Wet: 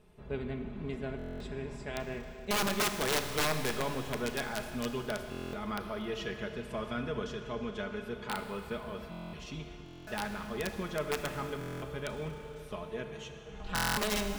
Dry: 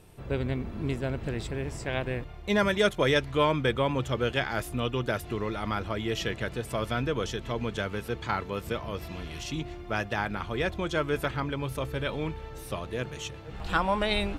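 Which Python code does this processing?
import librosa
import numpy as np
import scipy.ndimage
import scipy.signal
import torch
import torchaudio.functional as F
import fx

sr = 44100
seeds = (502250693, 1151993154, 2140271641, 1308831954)

y = fx.lowpass(x, sr, hz=3300.0, slope=6)
y = y + 0.65 * np.pad(y, (int(4.8 * sr / 1000.0), 0))[:len(y)]
y = (np.mod(10.0 ** (16.0 / 20.0) * y + 1.0, 2.0) - 1.0) / 10.0 ** (16.0 / 20.0)
y = fx.rev_schroeder(y, sr, rt60_s=3.0, comb_ms=26, drr_db=6.5)
y = fx.buffer_glitch(y, sr, at_s=(1.17, 5.3, 9.1, 9.84, 11.59, 13.74), block=1024, repeats=9)
y = F.gain(torch.from_numpy(y), -8.0).numpy()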